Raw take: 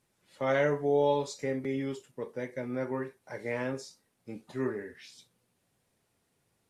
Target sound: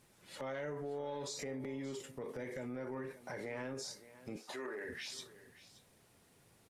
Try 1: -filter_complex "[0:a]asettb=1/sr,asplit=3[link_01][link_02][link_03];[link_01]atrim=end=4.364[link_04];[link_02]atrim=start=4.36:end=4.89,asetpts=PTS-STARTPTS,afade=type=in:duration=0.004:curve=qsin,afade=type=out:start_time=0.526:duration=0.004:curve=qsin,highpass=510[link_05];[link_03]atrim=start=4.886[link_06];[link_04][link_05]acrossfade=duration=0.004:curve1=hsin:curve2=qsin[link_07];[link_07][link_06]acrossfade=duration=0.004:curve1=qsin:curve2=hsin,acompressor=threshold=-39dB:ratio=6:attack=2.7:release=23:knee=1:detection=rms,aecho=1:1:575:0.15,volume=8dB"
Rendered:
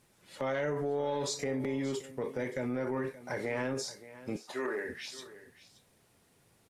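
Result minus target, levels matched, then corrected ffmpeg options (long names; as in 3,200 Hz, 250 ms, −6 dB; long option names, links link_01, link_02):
downward compressor: peak gain reduction −9 dB
-filter_complex "[0:a]asettb=1/sr,asplit=3[link_01][link_02][link_03];[link_01]atrim=end=4.364[link_04];[link_02]atrim=start=4.36:end=4.89,asetpts=PTS-STARTPTS,afade=type=in:duration=0.004:curve=qsin,afade=type=out:start_time=0.526:duration=0.004:curve=qsin,highpass=510[link_05];[link_03]atrim=start=4.886[link_06];[link_04][link_05]acrossfade=duration=0.004:curve1=hsin:curve2=qsin[link_07];[link_07][link_06]acrossfade=duration=0.004:curve1=qsin:curve2=hsin,acompressor=threshold=-49.5dB:ratio=6:attack=2.7:release=23:knee=1:detection=rms,aecho=1:1:575:0.15,volume=8dB"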